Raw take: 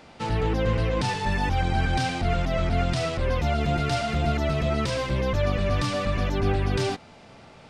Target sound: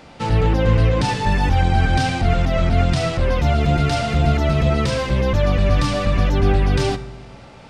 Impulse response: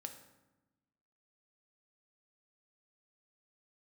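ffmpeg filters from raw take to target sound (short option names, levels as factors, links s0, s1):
-filter_complex "[0:a]asplit=2[s0][s1];[1:a]atrim=start_sample=2205,lowshelf=f=180:g=6.5[s2];[s1][s2]afir=irnorm=-1:irlink=0,volume=1.88[s3];[s0][s3]amix=inputs=2:normalize=0,volume=0.841"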